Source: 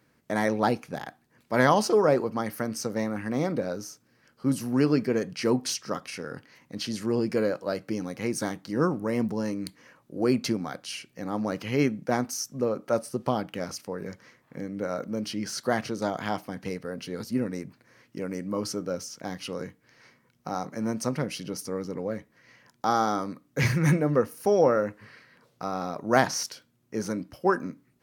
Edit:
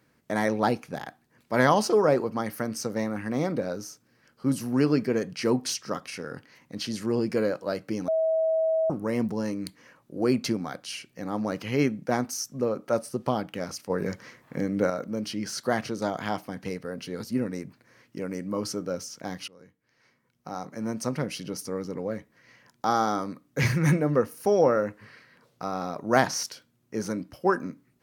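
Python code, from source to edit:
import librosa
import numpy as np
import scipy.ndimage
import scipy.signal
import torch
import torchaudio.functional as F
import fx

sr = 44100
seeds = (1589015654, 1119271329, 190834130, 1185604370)

y = fx.edit(x, sr, fx.bleep(start_s=8.08, length_s=0.82, hz=644.0, db=-21.0),
    fx.clip_gain(start_s=13.9, length_s=1.0, db=7.0),
    fx.fade_in_from(start_s=19.48, length_s=1.78, floor_db=-23.5), tone=tone)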